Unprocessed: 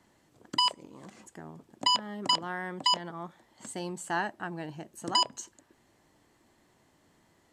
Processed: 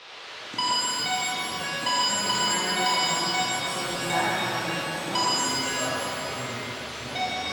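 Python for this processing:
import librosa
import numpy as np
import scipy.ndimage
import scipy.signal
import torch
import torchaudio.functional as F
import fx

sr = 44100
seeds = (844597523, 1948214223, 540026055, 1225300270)

y = fx.dmg_noise_band(x, sr, seeds[0], low_hz=380.0, high_hz=4300.0, level_db=-45.0)
y = fx.echo_pitch(y, sr, ms=278, semitones=-5, count=3, db_per_echo=-6.0)
y = fx.buffer_glitch(y, sr, at_s=(3.85, 5.5), block=512, repeats=8)
y = fx.rev_shimmer(y, sr, seeds[1], rt60_s=3.2, semitones=7, shimmer_db=-8, drr_db=-7.5)
y = F.gain(torch.from_numpy(y), -3.0).numpy()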